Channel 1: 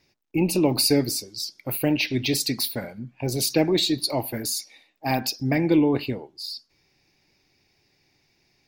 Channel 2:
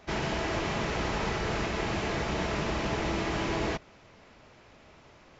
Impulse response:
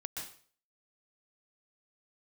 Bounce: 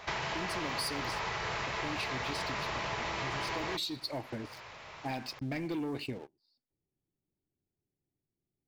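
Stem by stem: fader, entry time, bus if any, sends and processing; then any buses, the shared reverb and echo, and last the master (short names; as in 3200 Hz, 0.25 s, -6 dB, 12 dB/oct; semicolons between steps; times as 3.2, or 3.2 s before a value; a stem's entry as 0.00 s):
-13.0 dB, 0.00 s, no send, notch 6900 Hz, Q 8.8; low-pass opened by the level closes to 380 Hz, open at -16 dBFS; sample leveller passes 2
-3.5 dB, 0.00 s, no send, graphic EQ 125/250/500/1000/2000/4000 Hz +8/-6/+5/+11/+7/+5 dB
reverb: off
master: high shelf 2600 Hz +9.5 dB; compressor 4:1, threshold -35 dBFS, peak gain reduction 14.5 dB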